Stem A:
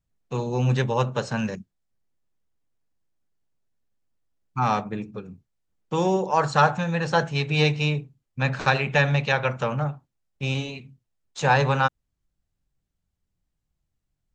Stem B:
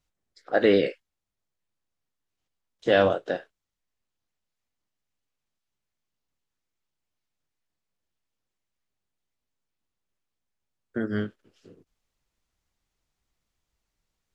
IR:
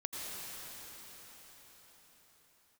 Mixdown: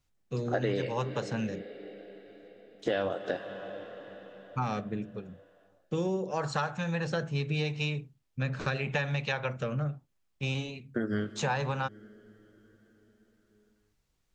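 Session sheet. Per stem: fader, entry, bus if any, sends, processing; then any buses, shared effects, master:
-2.0 dB, 0.00 s, no send, rotary cabinet horn 0.85 Hz
+0.5 dB, 0.00 s, send -16.5 dB, none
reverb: on, pre-delay 78 ms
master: compression 6:1, threshold -27 dBFS, peak gain reduction 14 dB

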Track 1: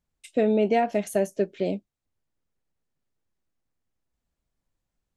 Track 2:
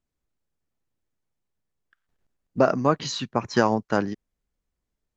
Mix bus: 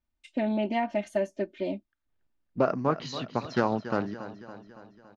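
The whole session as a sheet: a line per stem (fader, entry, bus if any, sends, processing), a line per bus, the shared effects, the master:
-4.5 dB, 0.00 s, no send, no echo send, peaking EQ 480 Hz -8 dB 0.44 oct; comb 3.3 ms, depth 82%
1.86 s -18.5 dB -> 2.19 s -5.5 dB, 0.00 s, no send, echo send -13 dB, none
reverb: none
echo: feedback delay 281 ms, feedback 57%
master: low-pass 4.3 kHz 12 dB/octave; loudspeaker Doppler distortion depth 0.13 ms

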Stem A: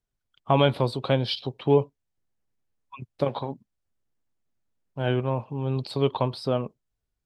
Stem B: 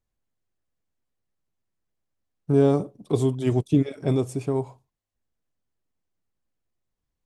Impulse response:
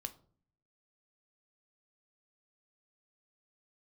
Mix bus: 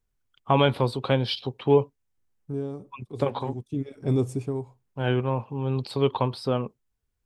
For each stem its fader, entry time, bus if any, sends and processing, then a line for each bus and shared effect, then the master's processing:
+2.0 dB, 0.00 s, no send, peaking EQ 4.2 kHz -3.5 dB 0.77 oct
-3.5 dB, 0.00 s, no send, bass shelf 450 Hz +8 dB; auto duck -15 dB, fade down 0.65 s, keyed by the first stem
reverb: none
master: graphic EQ with 31 bands 160 Hz -6 dB, 315 Hz -3 dB, 630 Hz -6 dB

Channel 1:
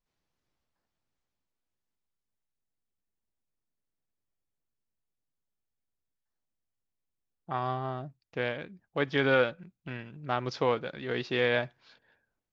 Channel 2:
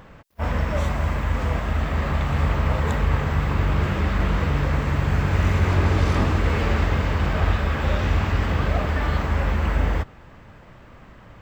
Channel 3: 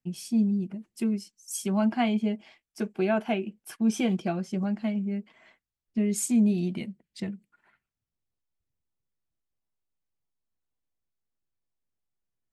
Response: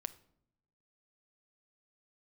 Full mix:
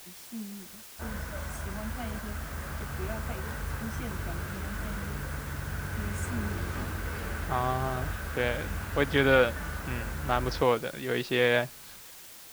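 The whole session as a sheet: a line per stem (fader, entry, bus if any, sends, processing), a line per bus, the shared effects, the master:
+2.5 dB, 0.00 s, no send, none
-15.0 dB, 0.60 s, no send, peaking EQ 1.5 kHz +11 dB 0.26 oct
-14.0 dB, 0.00 s, no send, high-pass 200 Hz 24 dB/octave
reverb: none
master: word length cut 8-bit, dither triangular

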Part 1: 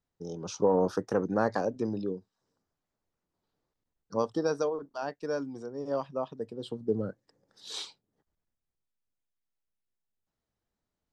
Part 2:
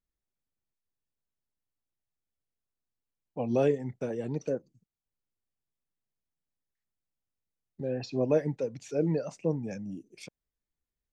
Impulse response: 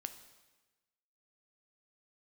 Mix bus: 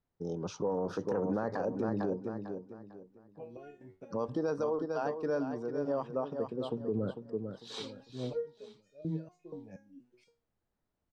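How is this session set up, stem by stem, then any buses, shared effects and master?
+1.0 dB, 0.00 s, send -15 dB, echo send -8.5 dB, none
-2.0 dB, 0.00 s, send -21.5 dB, no echo send, bit crusher 11-bit; resonator arpeggio 4.2 Hz 94–610 Hz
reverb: on, RT60 1.2 s, pre-delay 4 ms
echo: feedback delay 449 ms, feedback 30%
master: low-pass 1.8 kHz 6 dB/octave; peak limiter -23.5 dBFS, peak gain reduction 11 dB

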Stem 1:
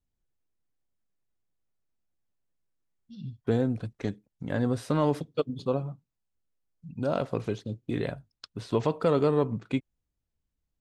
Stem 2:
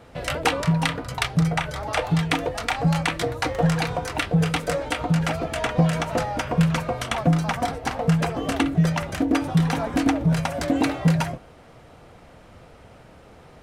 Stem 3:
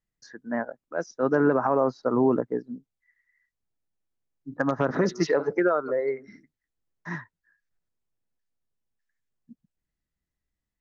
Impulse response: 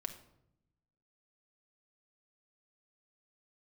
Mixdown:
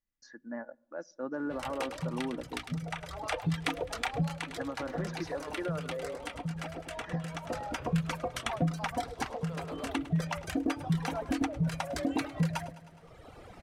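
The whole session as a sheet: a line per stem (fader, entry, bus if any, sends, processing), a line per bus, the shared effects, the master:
-11.0 dB, 0.45 s, no send, echo send -4.5 dB, high-pass 540 Hz
+1.5 dB, 1.35 s, no send, echo send -19 dB, reverb removal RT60 1.3 s; auto duck -9 dB, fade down 0.25 s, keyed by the third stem
-8.0 dB, 0.00 s, send -19 dB, no echo send, comb 3.5 ms, depth 54%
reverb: on, RT60 0.80 s, pre-delay 5 ms
echo: feedback delay 104 ms, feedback 50%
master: compression 1.5:1, threshold -46 dBFS, peak gain reduction 12 dB

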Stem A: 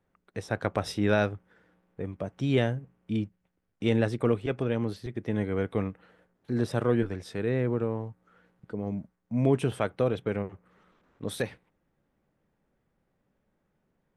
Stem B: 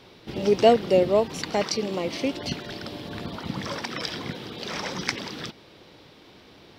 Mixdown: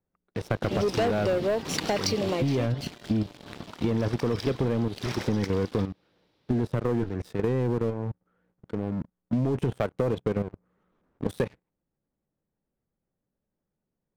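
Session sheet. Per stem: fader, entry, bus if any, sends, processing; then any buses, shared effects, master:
-0.5 dB, 0.00 s, no send, tilt shelf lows +5 dB, about 1.1 kHz; level held to a coarse grid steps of 13 dB
2.30 s -6 dB -> 2.78 s -14 dB, 0.35 s, no send, none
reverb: none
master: waveshaping leveller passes 3; compression, threshold -23 dBFS, peak gain reduction 10 dB

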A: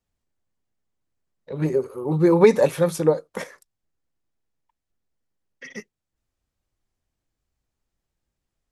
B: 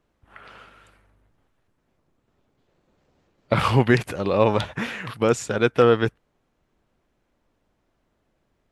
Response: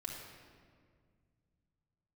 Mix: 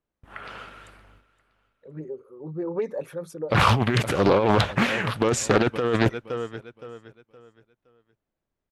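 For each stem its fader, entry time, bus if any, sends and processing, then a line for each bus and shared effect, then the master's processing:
-17.0 dB, 0.35 s, no send, no echo send, resonances exaggerated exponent 1.5; peaking EQ 1.5 kHz +6 dB 0.77 oct
+3.0 dB, 0.00 s, no send, echo send -20.5 dB, gate with hold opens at -53 dBFS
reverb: none
echo: feedback delay 517 ms, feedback 30%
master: compressor with a negative ratio -19 dBFS, ratio -1; loudspeaker Doppler distortion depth 0.59 ms

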